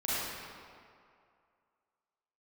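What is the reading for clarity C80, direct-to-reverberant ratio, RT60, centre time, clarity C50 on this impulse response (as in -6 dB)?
-3.0 dB, -10.5 dB, 2.3 s, 163 ms, -6.0 dB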